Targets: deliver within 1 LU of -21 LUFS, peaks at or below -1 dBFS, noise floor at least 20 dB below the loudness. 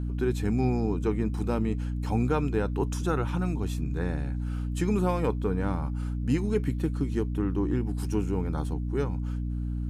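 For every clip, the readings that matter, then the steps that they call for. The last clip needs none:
hum 60 Hz; highest harmonic 300 Hz; hum level -28 dBFS; loudness -29.0 LUFS; peak level -12.5 dBFS; loudness target -21.0 LUFS
-> hum notches 60/120/180/240/300 Hz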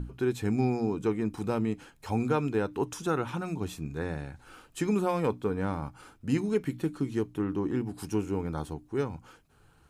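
hum not found; loudness -31.0 LUFS; peak level -14.0 dBFS; loudness target -21.0 LUFS
-> trim +10 dB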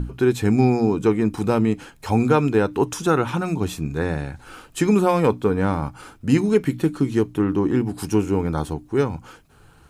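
loudness -21.0 LUFS; peak level -4.0 dBFS; noise floor -52 dBFS

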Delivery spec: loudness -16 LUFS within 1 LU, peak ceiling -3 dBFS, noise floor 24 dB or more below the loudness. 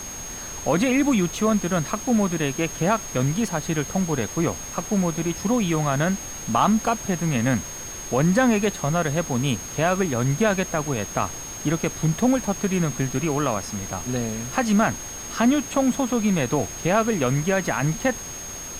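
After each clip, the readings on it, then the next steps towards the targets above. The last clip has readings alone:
steady tone 6.5 kHz; tone level -34 dBFS; noise floor -35 dBFS; noise floor target -48 dBFS; loudness -23.5 LUFS; peak level -6.5 dBFS; loudness target -16.0 LUFS
-> band-stop 6.5 kHz, Q 30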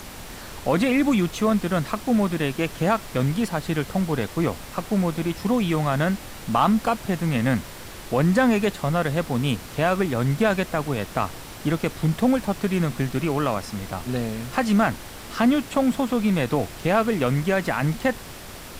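steady tone not found; noise floor -39 dBFS; noise floor target -48 dBFS
-> noise print and reduce 9 dB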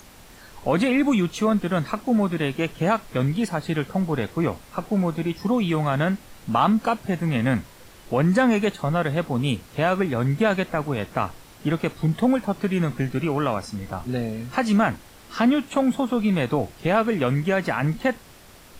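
noise floor -48 dBFS; loudness -23.5 LUFS; peak level -7.0 dBFS; loudness target -16.0 LUFS
-> trim +7.5 dB; peak limiter -3 dBFS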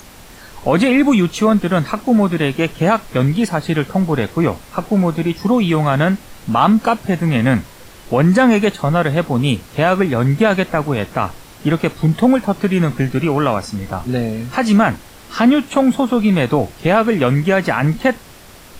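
loudness -16.0 LUFS; peak level -3.0 dBFS; noise floor -40 dBFS

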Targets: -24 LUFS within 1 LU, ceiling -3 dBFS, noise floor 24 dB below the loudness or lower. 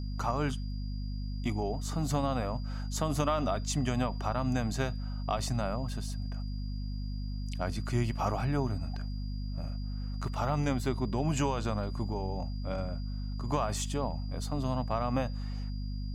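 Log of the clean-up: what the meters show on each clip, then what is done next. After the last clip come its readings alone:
hum 50 Hz; highest harmonic 250 Hz; hum level -33 dBFS; steady tone 4.8 kHz; tone level -53 dBFS; loudness -33.5 LUFS; peak level -16.0 dBFS; loudness target -24.0 LUFS
-> hum notches 50/100/150/200/250 Hz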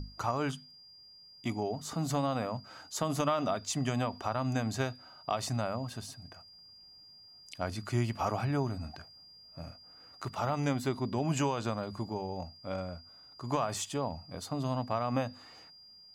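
hum not found; steady tone 4.8 kHz; tone level -53 dBFS
-> band-stop 4.8 kHz, Q 30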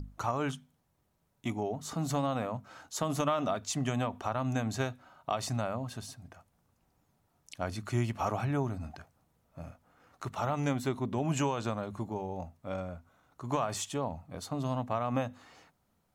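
steady tone not found; loudness -34.5 LUFS; peak level -17.5 dBFS; loudness target -24.0 LUFS
-> trim +10.5 dB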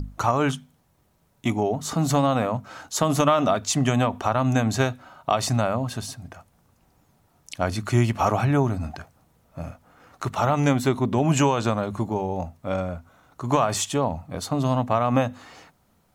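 loudness -24.0 LUFS; peak level -7.0 dBFS; noise floor -64 dBFS

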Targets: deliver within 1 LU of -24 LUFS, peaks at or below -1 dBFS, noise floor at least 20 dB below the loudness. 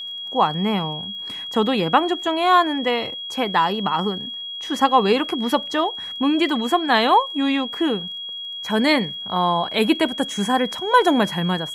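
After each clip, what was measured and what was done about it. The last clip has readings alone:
tick rate 20 per s; steady tone 3.3 kHz; tone level -29 dBFS; loudness -20.5 LUFS; peak level -3.0 dBFS; loudness target -24.0 LUFS
-> de-click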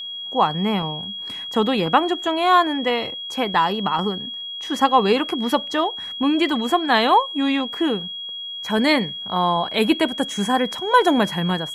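tick rate 0 per s; steady tone 3.3 kHz; tone level -29 dBFS
-> band-stop 3.3 kHz, Q 30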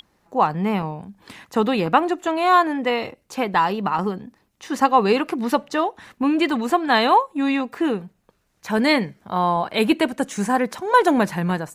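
steady tone not found; loudness -20.5 LUFS; peak level -3.0 dBFS; loudness target -24.0 LUFS
-> trim -3.5 dB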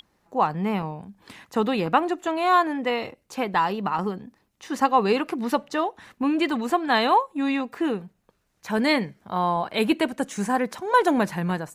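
loudness -24.0 LUFS; peak level -6.5 dBFS; noise floor -70 dBFS

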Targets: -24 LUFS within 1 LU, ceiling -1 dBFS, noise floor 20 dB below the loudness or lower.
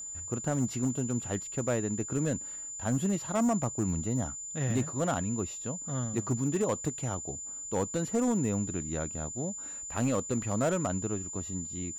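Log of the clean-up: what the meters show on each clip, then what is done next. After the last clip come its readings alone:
clipped samples 1.0%; clipping level -22.0 dBFS; steady tone 7.1 kHz; tone level -38 dBFS; loudness -31.5 LUFS; peak level -22.0 dBFS; loudness target -24.0 LUFS
-> clip repair -22 dBFS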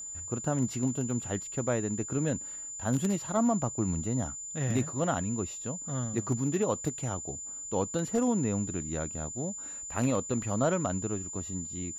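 clipped samples 0.0%; steady tone 7.1 kHz; tone level -38 dBFS
-> band-stop 7.1 kHz, Q 30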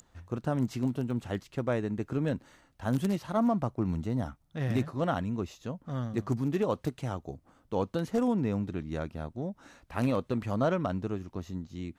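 steady tone not found; loudness -32.0 LUFS; peak level -13.5 dBFS; loudness target -24.0 LUFS
-> trim +8 dB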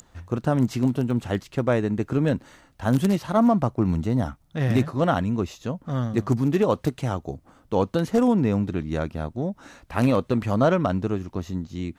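loudness -24.0 LUFS; peak level -5.5 dBFS; noise floor -59 dBFS

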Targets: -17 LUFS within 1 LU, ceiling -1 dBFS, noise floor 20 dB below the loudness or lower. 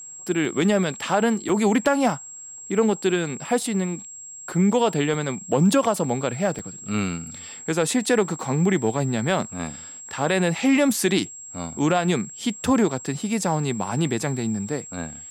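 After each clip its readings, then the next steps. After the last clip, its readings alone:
dropouts 4; longest dropout 2.5 ms; steady tone 7.6 kHz; tone level -37 dBFS; loudness -23.0 LUFS; peak level -7.5 dBFS; loudness target -17.0 LUFS
-> interpolate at 0.45/1.49/5.14/6.59 s, 2.5 ms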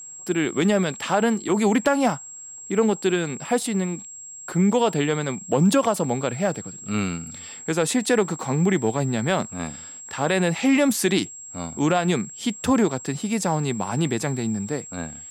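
dropouts 0; steady tone 7.6 kHz; tone level -37 dBFS
-> band-stop 7.6 kHz, Q 30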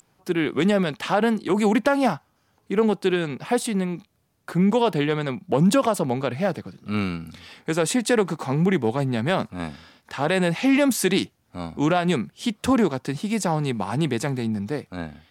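steady tone not found; loudness -23.0 LUFS; peak level -7.5 dBFS; loudness target -17.0 LUFS
-> trim +6 dB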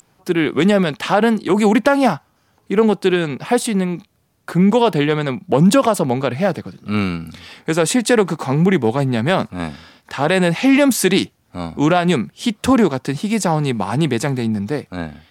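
loudness -17.0 LUFS; peak level -1.5 dBFS; noise floor -61 dBFS

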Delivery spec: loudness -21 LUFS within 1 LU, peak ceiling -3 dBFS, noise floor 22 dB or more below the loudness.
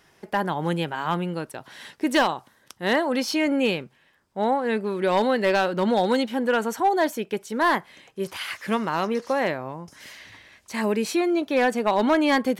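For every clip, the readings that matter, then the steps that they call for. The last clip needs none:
clipped samples 0.4%; clipping level -13.5 dBFS; loudness -24.0 LUFS; peak level -13.5 dBFS; loudness target -21.0 LUFS
-> clip repair -13.5 dBFS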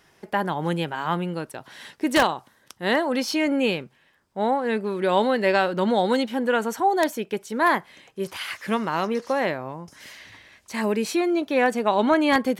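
clipped samples 0.0%; loudness -24.0 LUFS; peak level -4.5 dBFS; loudness target -21.0 LUFS
-> trim +3 dB; peak limiter -3 dBFS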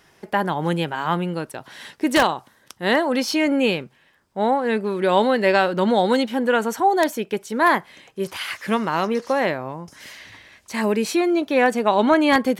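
loudness -21.0 LUFS; peak level -3.0 dBFS; noise floor -58 dBFS

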